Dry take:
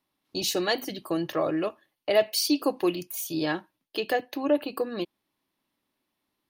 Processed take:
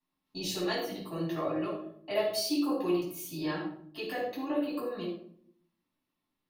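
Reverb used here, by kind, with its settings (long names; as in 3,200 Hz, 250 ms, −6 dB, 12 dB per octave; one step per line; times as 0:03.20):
rectangular room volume 840 cubic metres, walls furnished, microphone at 9.4 metres
level −16.5 dB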